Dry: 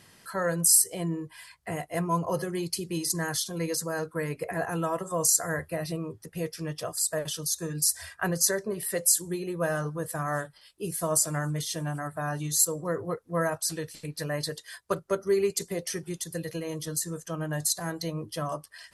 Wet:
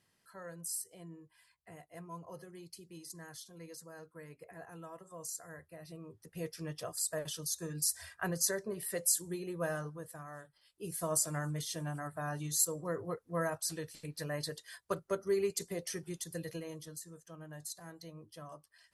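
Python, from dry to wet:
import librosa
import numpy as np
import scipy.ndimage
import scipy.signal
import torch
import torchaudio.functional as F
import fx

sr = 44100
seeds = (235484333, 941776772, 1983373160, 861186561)

y = fx.gain(x, sr, db=fx.line((5.74, -19.5), (6.46, -7.5), (9.7, -7.5), (10.36, -19.0), (10.96, -7.0), (16.53, -7.0), (17.03, -17.0)))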